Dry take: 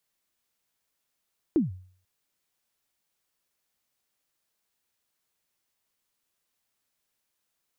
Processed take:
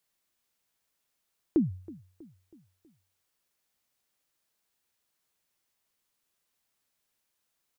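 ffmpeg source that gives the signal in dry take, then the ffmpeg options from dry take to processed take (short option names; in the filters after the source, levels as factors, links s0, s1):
-f lavfi -i "aevalsrc='0.158*pow(10,-3*t/0.5)*sin(2*PI*(360*0.149/log(92/360)*(exp(log(92/360)*min(t,0.149)/0.149)-1)+92*max(t-0.149,0)))':d=0.49:s=44100"
-filter_complex "[0:a]asplit=2[s0][s1];[s1]adelay=322,lowpass=f=2000:p=1,volume=0.1,asplit=2[s2][s3];[s3]adelay=322,lowpass=f=2000:p=1,volume=0.5,asplit=2[s4][s5];[s5]adelay=322,lowpass=f=2000:p=1,volume=0.5,asplit=2[s6][s7];[s7]adelay=322,lowpass=f=2000:p=1,volume=0.5[s8];[s0][s2][s4][s6][s8]amix=inputs=5:normalize=0"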